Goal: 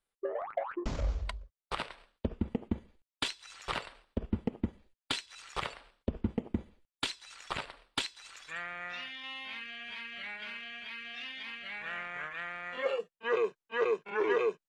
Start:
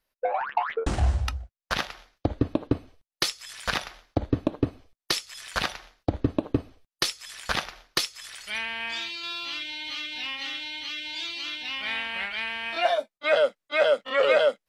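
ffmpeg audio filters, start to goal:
ffmpeg -i in.wav -af "asetrate=34006,aresample=44100,atempo=1.29684,volume=-8.5dB" out.wav

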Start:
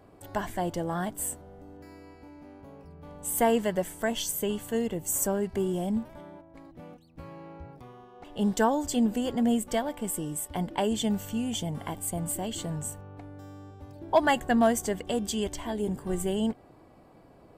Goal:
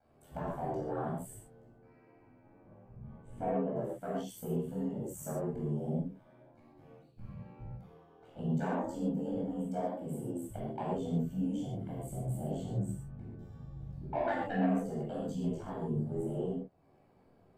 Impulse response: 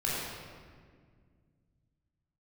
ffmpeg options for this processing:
-filter_complex "[0:a]highpass=58,afwtdn=0.0282,asettb=1/sr,asplit=3[link_01][link_02][link_03];[link_01]atrim=end=1.654[link_04];[link_02]atrim=start=1.65:end=3.76,asetpts=PTS-STARTPTS,afade=type=in:duration=0.004:curve=qsin,afade=type=out:start_time=2.106:duration=0.004:curve=qsin,lowpass=2000[link_05];[link_03]atrim=start=3.756[link_06];[link_04][link_05]acrossfade=duration=0.004:curve1=hsin:curve2=qsin[link_07];[link_07][link_06]acrossfade=duration=0.004:curve1=qsin:curve2=hsin,acompressor=threshold=-48dB:ratio=2,asoftclip=type=tanh:threshold=-29dB,flanger=delay=15.5:depth=5.1:speed=0.6,aeval=exprs='val(0)*sin(2*PI*40*n/s)':channel_layout=same[link_08];[1:a]atrim=start_sample=2205,afade=type=out:start_time=0.2:duration=0.01,atrim=end_sample=9261[link_09];[link_08][link_09]afir=irnorm=-1:irlink=0,volume=5dB"

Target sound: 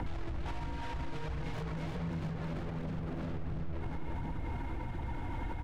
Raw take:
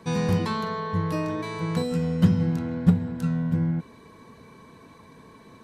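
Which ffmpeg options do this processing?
ffmpeg -i in.wav -filter_complex "[0:a]asplit=2[link_01][link_02];[link_02]acompressor=threshold=-32dB:ratio=6,volume=3dB[link_03];[link_01][link_03]amix=inputs=2:normalize=0,aresample=8000,aresample=44100,acrusher=bits=3:mode=log:mix=0:aa=0.000001,asoftclip=type=tanh:threshold=-40dB,aemphasis=mode=reproduction:type=bsi,asettb=1/sr,asplit=3[link_04][link_05][link_06];[link_04]atrim=end=1.534[link_07];[link_05]atrim=start=1.53:end=3.35,asetpts=PTS-STARTPTS,afade=type=in:duration=0.004:curve=qsin,afade=type=out:start_time=1.816:duration=0.004:curve=qsin,aeval=exprs='abs(val(0))':channel_layout=same[link_08];[link_06]atrim=start=3.346[link_09];[link_07][link_08]acrossfade=duration=0.004:curve1=hsin:curve2=qsin[link_10];[link_10][link_09]acrossfade=duration=0.004:curve1=qsin:curve2=hsin,afreqshift=-160,asplit=2[link_11][link_12];[link_12]aecho=0:1:341|682|1023|1364|1705|2046|2387|2728:0.708|0.396|0.222|0.124|0.0696|0.039|0.0218|0.0122[link_13];[link_11][link_13]amix=inputs=2:normalize=0,aphaser=in_gain=1:out_gain=1:delay=3.7:decay=0.28:speed=1.4:type=triangular,alimiter=level_in=23.5dB:limit=-24dB:level=0:latency=1:release=450,volume=-23.5dB,volume=17.5dB" out.wav

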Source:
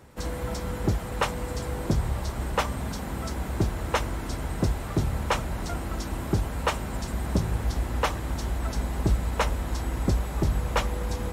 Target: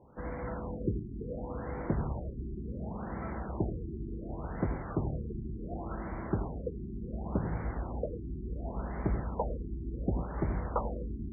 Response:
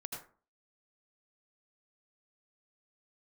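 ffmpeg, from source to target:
-filter_complex "[0:a]asplit=2[link_01][link_02];[link_02]highpass=130,lowpass=3100[link_03];[1:a]atrim=start_sample=2205[link_04];[link_03][link_04]afir=irnorm=-1:irlink=0,volume=-0.5dB[link_05];[link_01][link_05]amix=inputs=2:normalize=0,afftfilt=real='re*lt(b*sr/1024,390*pow(2400/390,0.5+0.5*sin(2*PI*0.69*pts/sr)))':imag='im*lt(b*sr/1024,390*pow(2400/390,0.5+0.5*sin(2*PI*0.69*pts/sr)))':win_size=1024:overlap=0.75,volume=-8.5dB"

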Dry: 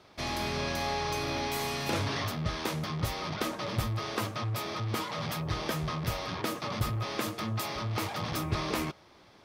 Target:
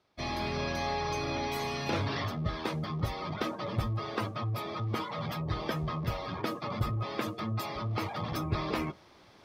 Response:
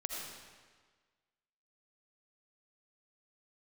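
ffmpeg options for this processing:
-af "afftdn=noise_reduction=16:noise_floor=-39,areverse,acompressor=mode=upward:threshold=-43dB:ratio=2.5,areverse"

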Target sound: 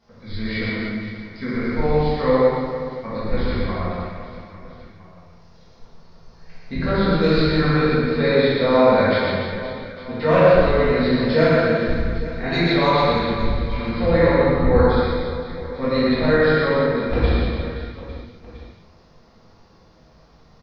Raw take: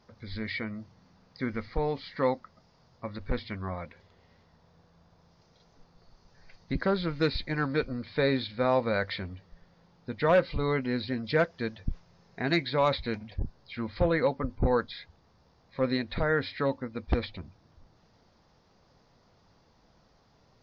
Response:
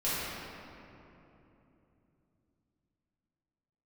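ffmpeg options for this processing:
-filter_complex "[0:a]asettb=1/sr,asplit=3[link_01][link_02][link_03];[link_01]atrim=end=15.844[link_04];[link_02]atrim=start=15.84:end=16.81,asetpts=PTS-STARTPTS,afade=type=in:duration=0.004:curve=qsin,afade=type=out:start_time=0.966:duration=0.004:curve=qsin,acrossover=split=160[link_05][link_06];[link_05]acompressor=threshold=-34dB:ratio=6[link_07];[link_07][link_06]amix=inputs=2:normalize=0[link_08];[link_03]atrim=start=16.806[link_09];[link_04][link_08]acrossfade=duration=0.004:curve1=hsin:curve2=qsin[link_10];[link_10][link_09]acrossfade=duration=0.004:curve1=qsin:curve2=hsin,aecho=1:1:120|288|523.2|852.5|1313:0.631|0.398|0.251|0.158|0.1[link_11];[1:a]atrim=start_sample=2205,afade=type=out:start_time=0.31:duration=0.01,atrim=end_sample=14112[link_12];[link_11][link_12]afir=irnorm=-1:irlink=0"

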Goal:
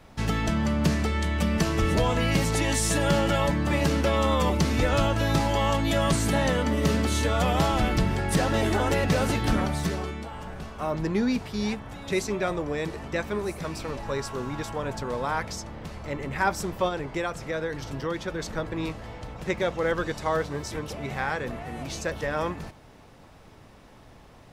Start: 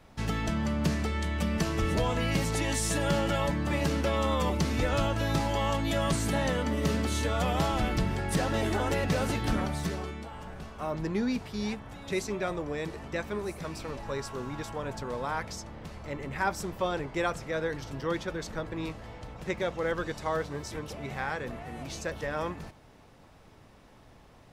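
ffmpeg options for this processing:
ffmpeg -i in.wav -filter_complex "[0:a]asplit=3[link_01][link_02][link_03];[link_01]afade=type=out:start_time=16.88:duration=0.02[link_04];[link_02]acompressor=threshold=-32dB:ratio=2.5,afade=type=in:start_time=16.88:duration=0.02,afade=type=out:start_time=18.38:duration=0.02[link_05];[link_03]afade=type=in:start_time=18.38:duration=0.02[link_06];[link_04][link_05][link_06]amix=inputs=3:normalize=0,volume=4.5dB" out.wav

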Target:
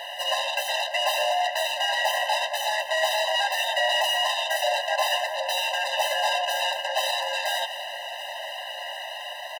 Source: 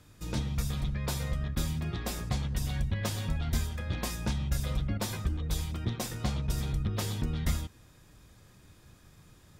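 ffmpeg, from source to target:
ffmpeg -i in.wav -filter_complex "[0:a]equalizer=frequency=250:width_type=o:width=0.67:gain=8,equalizer=frequency=630:width_type=o:width=0.67:gain=8,equalizer=frequency=2500:width_type=o:width=0.67:gain=8,equalizer=frequency=6300:width_type=o:width=0.67:gain=-11,asplit=2[link_01][link_02];[link_02]highpass=frequency=720:poles=1,volume=36dB,asoftclip=type=tanh:threshold=-14dB[link_03];[link_01][link_03]amix=inputs=2:normalize=0,lowpass=frequency=2900:poles=1,volume=-6dB,asetrate=50951,aresample=44100,atempo=0.865537,aecho=1:1:727|1454|2181|2908|3635:0.15|0.0853|0.0486|0.0277|0.0158,afftfilt=real='re*eq(mod(floor(b*sr/1024/520),2),1)':imag='im*eq(mod(floor(b*sr/1024/520),2),1)':win_size=1024:overlap=0.75,volume=1.5dB" out.wav

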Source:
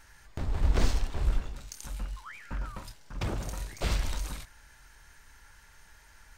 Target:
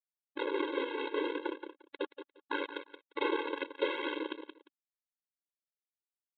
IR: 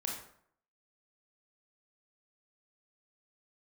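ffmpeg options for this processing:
-af "aresample=8000,acrusher=bits=4:mix=0:aa=0.000001,aresample=44100,highpass=frequency=56:poles=1,equalizer=frequency=110:width_type=o:width=0.77:gain=-8.5,aphaser=in_gain=1:out_gain=1:delay=4.6:decay=0.33:speed=0.46:type=sinusoidal,tiltshelf=frequency=780:gain=5,aecho=1:1:175|350:0.282|0.0451,alimiter=limit=-21dB:level=0:latency=1:release=393,afftfilt=real='re*eq(mod(floor(b*sr/1024/280),2),1)':imag='im*eq(mod(floor(b*sr/1024/280),2),1)':win_size=1024:overlap=0.75,volume=6dB"

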